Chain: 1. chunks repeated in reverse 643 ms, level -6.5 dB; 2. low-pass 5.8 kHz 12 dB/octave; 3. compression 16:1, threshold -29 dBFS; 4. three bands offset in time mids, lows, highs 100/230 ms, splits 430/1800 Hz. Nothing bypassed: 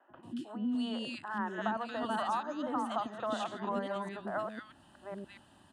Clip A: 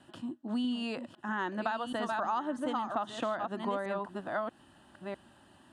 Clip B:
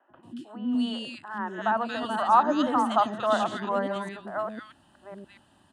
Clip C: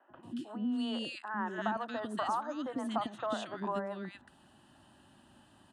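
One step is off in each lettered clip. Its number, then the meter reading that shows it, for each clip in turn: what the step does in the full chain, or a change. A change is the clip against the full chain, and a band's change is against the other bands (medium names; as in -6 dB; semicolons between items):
4, echo-to-direct -1.5 dB to none; 3, mean gain reduction 5.5 dB; 1, crest factor change +2.0 dB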